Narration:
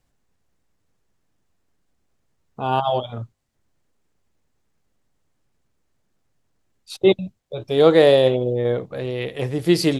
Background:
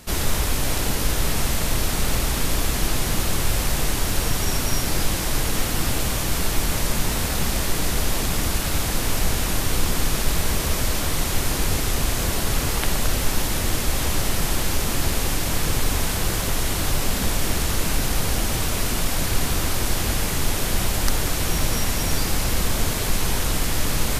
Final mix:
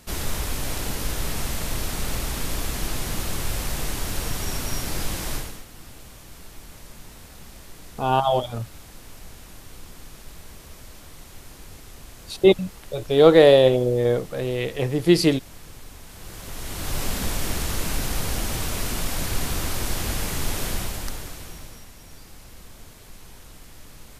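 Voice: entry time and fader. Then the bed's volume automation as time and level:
5.40 s, +0.5 dB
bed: 5.34 s -5.5 dB
5.65 s -21 dB
16.04 s -21 dB
17.01 s -4 dB
20.67 s -4 dB
21.91 s -23 dB

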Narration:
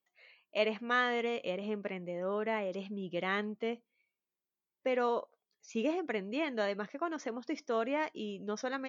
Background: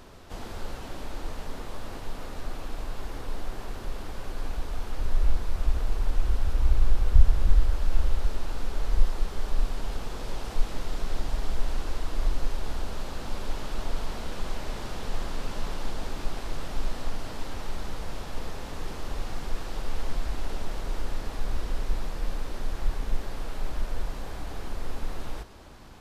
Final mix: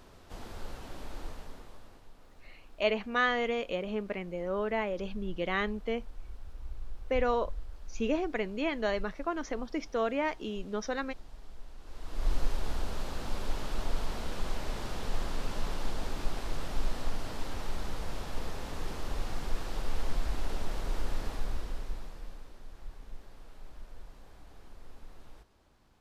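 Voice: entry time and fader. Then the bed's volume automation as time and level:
2.25 s, +2.5 dB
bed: 1.24 s -6 dB
2.11 s -20 dB
11.78 s -20 dB
12.32 s -2 dB
21.27 s -2 dB
22.57 s -17.5 dB

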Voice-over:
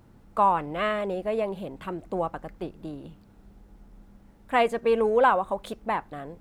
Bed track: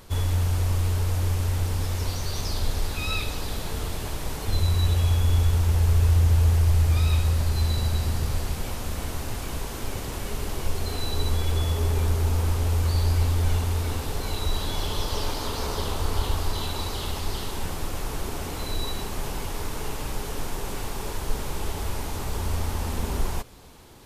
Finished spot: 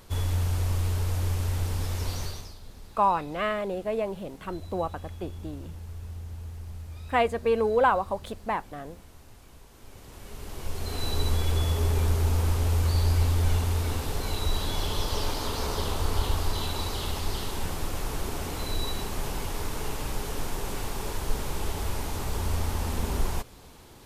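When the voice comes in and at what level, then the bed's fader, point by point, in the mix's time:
2.60 s, -1.5 dB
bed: 2.24 s -3 dB
2.59 s -20 dB
9.70 s -20 dB
11.07 s -1 dB

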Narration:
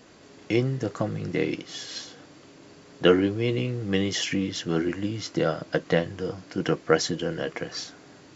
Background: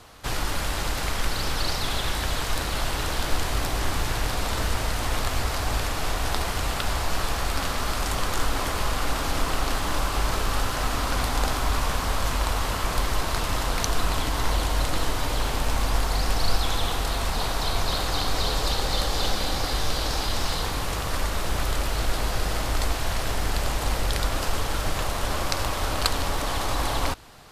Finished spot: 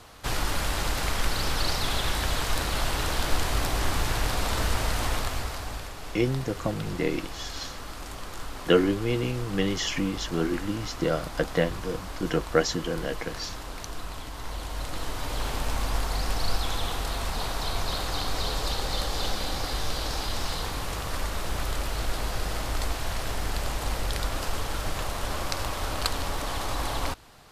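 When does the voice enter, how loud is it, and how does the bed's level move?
5.65 s, -1.5 dB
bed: 5.04 s -0.5 dB
5.95 s -12.5 dB
14.37 s -12.5 dB
15.48 s -4 dB

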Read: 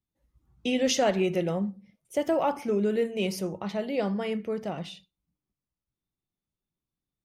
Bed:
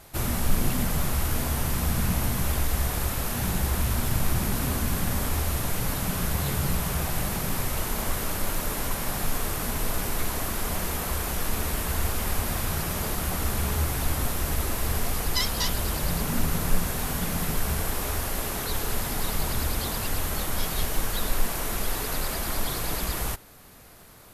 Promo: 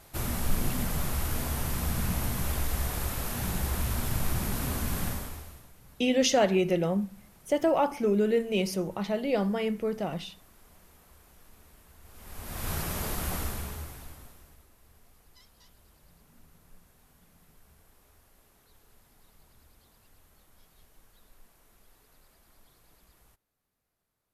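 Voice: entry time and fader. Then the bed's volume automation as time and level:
5.35 s, +1.0 dB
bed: 5.07 s -4.5 dB
5.73 s -28.5 dB
12.01 s -28.5 dB
12.70 s -4 dB
13.36 s -4 dB
14.69 s -33 dB

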